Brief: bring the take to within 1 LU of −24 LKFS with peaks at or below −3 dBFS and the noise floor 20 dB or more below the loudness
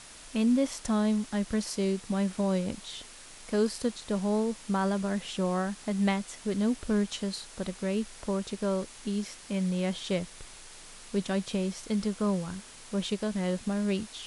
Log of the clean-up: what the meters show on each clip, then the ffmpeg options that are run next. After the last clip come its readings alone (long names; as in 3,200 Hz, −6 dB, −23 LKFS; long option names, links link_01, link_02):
background noise floor −49 dBFS; target noise floor −51 dBFS; integrated loudness −30.5 LKFS; sample peak −14.5 dBFS; target loudness −24.0 LKFS
→ -af "afftdn=noise_reduction=6:noise_floor=-49"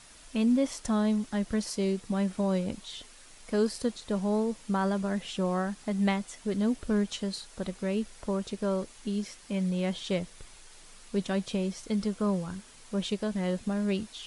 background noise floor −53 dBFS; integrated loudness −31.0 LKFS; sample peak −14.5 dBFS; target loudness −24.0 LKFS
→ -af "volume=7dB"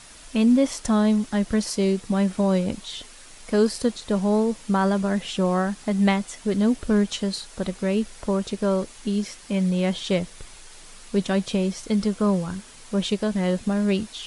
integrated loudness −24.0 LKFS; sample peak −7.5 dBFS; background noise floor −46 dBFS